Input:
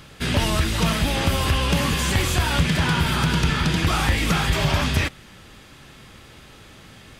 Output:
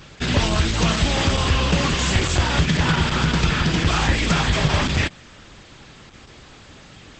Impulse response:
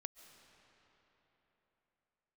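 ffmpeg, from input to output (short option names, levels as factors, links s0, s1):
-filter_complex "[0:a]asplit=3[s0][s1][s2];[s0]afade=t=out:st=0.93:d=0.02[s3];[s1]highshelf=f=7000:g=4.5,afade=t=in:st=0.93:d=0.02,afade=t=out:st=1.36:d=0.02[s4];[s2]afade=t=in:st=1.36:d=0.02[s5];[s3][s4][s5]amix=inputs=3:normalize=0,volume=1.26" -ar 48000 -c:a libopus -b:a 10k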